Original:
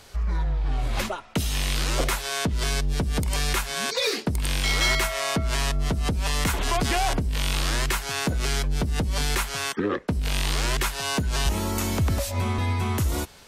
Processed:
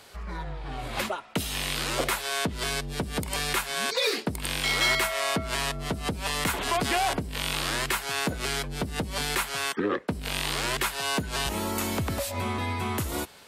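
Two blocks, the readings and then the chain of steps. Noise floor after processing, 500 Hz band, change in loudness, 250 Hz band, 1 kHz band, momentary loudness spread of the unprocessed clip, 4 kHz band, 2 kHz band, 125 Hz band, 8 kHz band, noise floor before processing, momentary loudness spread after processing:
-41 dBFS, -1.0 dB, -2.5 dB, -3.0 dB, -0.5 dB, 4 LU, -1.0 dB, 0.0 dB, -8.0 dB, -2.5 dB, -39 dBFS, 6 LU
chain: high-pass 220 Hz 6 dB/octave; peaking EQ 6 kHz -5 dB 0.53 oct

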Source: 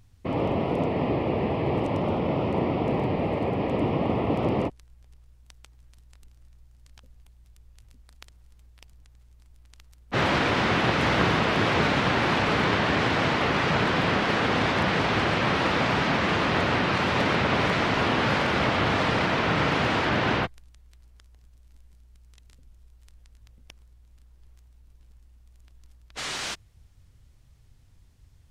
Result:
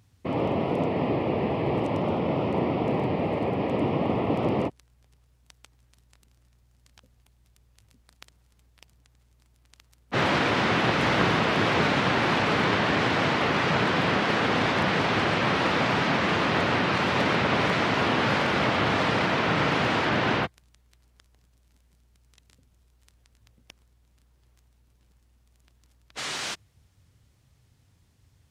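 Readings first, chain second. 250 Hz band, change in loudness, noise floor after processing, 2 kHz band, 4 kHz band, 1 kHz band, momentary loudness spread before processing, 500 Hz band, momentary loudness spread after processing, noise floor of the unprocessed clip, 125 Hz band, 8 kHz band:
0.0 dB, 0.0 dB, -64 dBFS, 0.0 dB, 0.0 dB, 0.0 dB, 4 LU, 0.0 dB, 5 LU, -56 dBFS, -1.5 dB, 0.0 dB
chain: high-pass 96 Hz

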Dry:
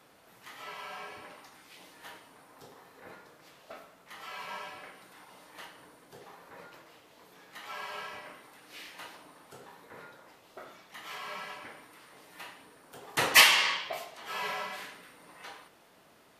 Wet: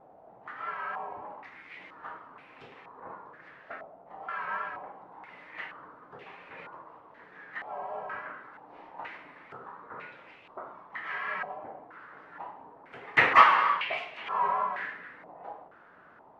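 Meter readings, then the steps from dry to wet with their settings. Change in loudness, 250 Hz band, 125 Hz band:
0.0 dB, +1.5 dB, +1.0 dB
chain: vibrato 3.3 Hz 49 cents; step-sequenced low-pass 2.1 Hz 740–2500 Hz; trim +1 dB

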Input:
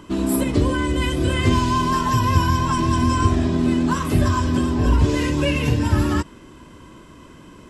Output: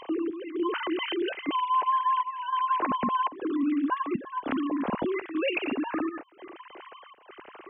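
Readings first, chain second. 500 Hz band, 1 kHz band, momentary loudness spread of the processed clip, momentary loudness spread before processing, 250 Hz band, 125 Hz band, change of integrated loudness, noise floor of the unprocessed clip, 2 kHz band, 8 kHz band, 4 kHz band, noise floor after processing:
-7.0 dB, -3.5 dB, 20 LU, 3 LU, -9.5 dB, -30.5 dB, -9.0 dB, -44 dBFS, -7.5 dB, under -40 dB, -9.0 dB, -52 dBFS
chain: formants replaced by sine waves; trance gate "xx..xxxxx.xxx" 101 bpm -12 dB; compression 2:1, threshold -37 dBFS, peak gain reduction 14.5 dB; trim +2.5 dB

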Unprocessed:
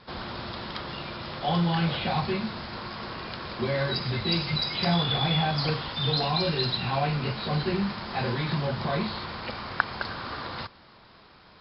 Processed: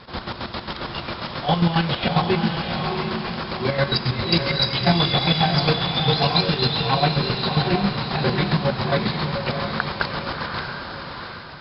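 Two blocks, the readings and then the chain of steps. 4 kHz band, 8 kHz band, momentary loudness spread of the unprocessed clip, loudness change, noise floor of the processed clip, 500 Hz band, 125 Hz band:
+7.0 dB, no reading, 11 LU, +6.5 dB, -36 dBFS, +7.0 dB, +6.0 dB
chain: square tremolo 7.4 Hz, depth 65%, duty 40%; echo that smears into a reverb 701 ms, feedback 41%, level -4.5 dB; trim +8.5 dB

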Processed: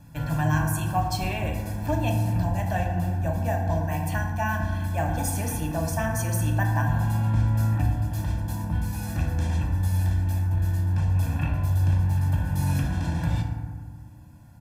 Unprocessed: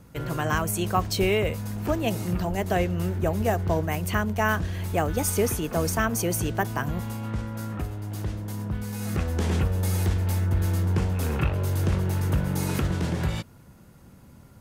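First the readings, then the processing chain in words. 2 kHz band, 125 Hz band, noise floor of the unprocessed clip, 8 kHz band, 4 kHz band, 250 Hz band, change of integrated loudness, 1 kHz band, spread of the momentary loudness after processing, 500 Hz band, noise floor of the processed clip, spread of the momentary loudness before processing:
-2.0 dB, +3.0 dB, -50 dBFS, -3.5 dB, -5.0 dB, -1.5 dB, +1.0 dB, 0.0 dB, 6 LU, -5.5 dB, -42 dBFS, 8 LU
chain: comb 1.2 ms, depth 90%; gain riding 0.5 s; FDN reverb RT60 1.7 s, low-frequency decay 1.25×, high-frequency decay 0.35×, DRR 0 dB; trim -8 dB

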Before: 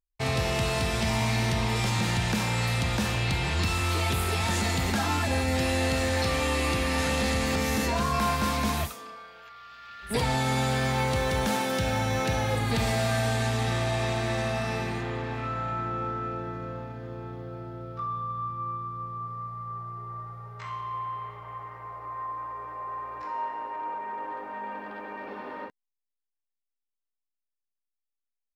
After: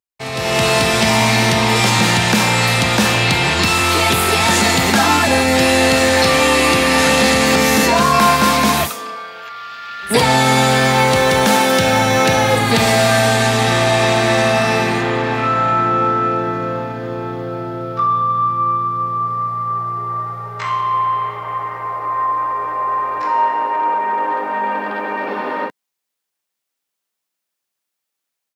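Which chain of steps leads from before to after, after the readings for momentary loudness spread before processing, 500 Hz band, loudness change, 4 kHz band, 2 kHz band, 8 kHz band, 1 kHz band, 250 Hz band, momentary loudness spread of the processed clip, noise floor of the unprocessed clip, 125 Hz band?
13 LU, +14.5 dB, +13.5 dB, +15.0 dB, +15.0 dB, +15.0 dB, +15.5 dB, +13.0 dB, 12 LU, -85 dBFS, +7.5 dB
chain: high-pass 130 Hz 12 dB/octave; bass shelf 220 Hz -4.5 dB; level rider gain up to 15.5 dB; trim +1.5 dB

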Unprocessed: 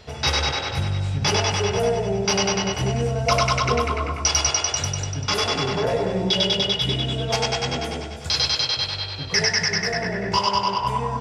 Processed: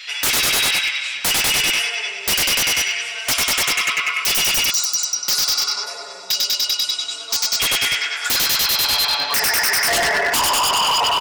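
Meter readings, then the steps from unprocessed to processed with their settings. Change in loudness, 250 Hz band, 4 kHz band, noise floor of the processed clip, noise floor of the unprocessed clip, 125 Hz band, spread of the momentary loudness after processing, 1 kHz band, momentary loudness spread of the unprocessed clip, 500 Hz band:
+5.0 dB, -9.0 dB, +5.5 dB, -31 dBFS, -32 dBFS, -16.0 dB, 5 LU, +1.0 dB, 6 LU, -6.5 dB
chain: in parallel at -8.5 dB: saturation -20.5 dBFS, distortion -11 dB; on the sum: spring tank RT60 2.9 s, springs 37 ms, chirp 80 ms, DRR 13.5 dB; dynamic bell 7.1 kHz, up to +7 dB, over -35 dBFS, Q 0.94; compression 5:1, threshold -19 dBFS, peak gain reduction 9 dB; high-pass sweep 2.3 kHz -> 800 Hz, 7.80–8.94 s; comb 7 ms, depth 76%; on a send: tape echo 122 ms, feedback 72%, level -6.5 dB, low-pass 1.3 kHz; on the sum: time-frequency box 4.71–7.60 s, 1.5–3.8 kHz -20 dB; graphic EQ with 31 bands 125 Hz -6 dB, 500 Hz -5 dB, 800 Hz -5 dB; wavefolder -20.5 dBFS; trim +8 dB

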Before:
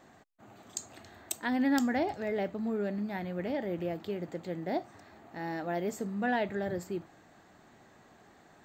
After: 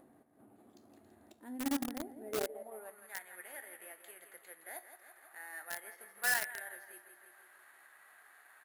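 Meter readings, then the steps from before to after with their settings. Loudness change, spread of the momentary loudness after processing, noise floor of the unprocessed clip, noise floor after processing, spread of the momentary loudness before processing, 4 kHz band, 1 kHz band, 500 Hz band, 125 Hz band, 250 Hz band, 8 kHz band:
-6.0 dB, 24 LU, -60 dBFS, -64 dBFS, 13 LU, -1.5 dB, -10.5 dB, -11.5 dB, -22.5 dB, -12.0 dB, 0.0 dB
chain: peaking EQ 190 Hz -13.5 dB 1.3 oct; feedback comb 72 Hz, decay 0.43 s, harmonics all, mix 60%; on a send: feedback delay 166 ms, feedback 51%, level -9 dB; on the sum: careless resampling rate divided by 4×, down filtered, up zero stuff; band-pass sweep 240 Hz -> 1.6 kHz, 2.17–3.10 s; transient shaper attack +1 dB, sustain -3 dB; in parallel at -10 dB: companded quantiser 2-bit; on the sum: treble shelf 4.9 kHz +10 dB; upward compressor, threshold -54 dBFS; trim +2.5 dB

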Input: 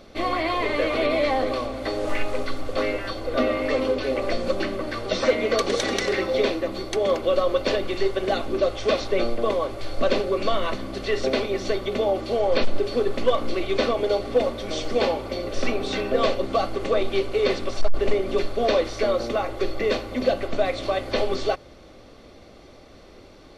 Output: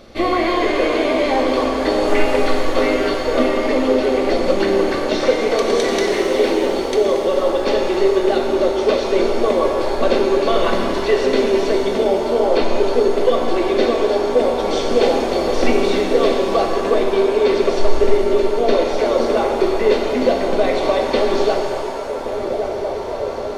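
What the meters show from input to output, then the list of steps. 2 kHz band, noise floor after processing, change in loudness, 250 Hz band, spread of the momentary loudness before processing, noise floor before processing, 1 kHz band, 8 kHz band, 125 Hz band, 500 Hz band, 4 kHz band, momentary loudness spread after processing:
+5.0 dB, -24 dBFS, +7.0 dB, +9.0 dB, 6 LU, -47 dBFS, +7.5 dB, +6.0 dB, +2.0 dB, +7.5 dB, +4.5 dB, 3 LU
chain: dynamic bell 370 Hz, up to +7 dB, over -36 dBFS, Q 1.5; on a send: band-passed feedback delay 1119 ms, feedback 70%, band-pass 600 Hz, level -15 dB; on the sum: gain riding within 10 dB 0.5 s; pitch-shifted reverb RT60 2.9 s, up +7 st, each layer -8 dB, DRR 1 dB; trim +1 dB

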